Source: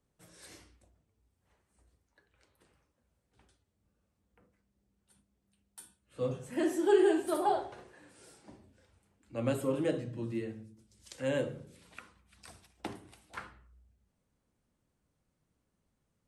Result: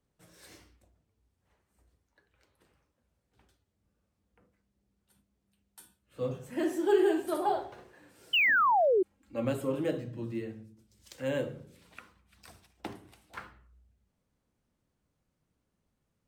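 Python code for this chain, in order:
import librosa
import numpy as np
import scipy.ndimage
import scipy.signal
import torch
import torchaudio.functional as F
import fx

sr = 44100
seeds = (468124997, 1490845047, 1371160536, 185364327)

y = fx.comb(x, sr, ms=3.7, depth=0.65, at=(8.37, 9.45))
y = fx.spec_paint(y, sr, seeds[0], shape='fall', start_s=8.33, length_s=0.7, low_hz=350.0, high_hz=3100.0, level_db=-24.0)
y = np.interp(np.arange(len(y)), np.arange(len(y))[::2], y[::2])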